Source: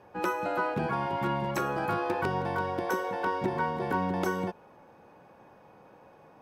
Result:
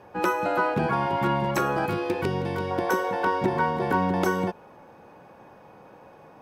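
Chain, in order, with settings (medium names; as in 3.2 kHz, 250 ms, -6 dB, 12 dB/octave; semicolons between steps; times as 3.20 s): 1.86–2.71 s: high-order bell 1 kHz -8.5 dB; trim +5.5 dB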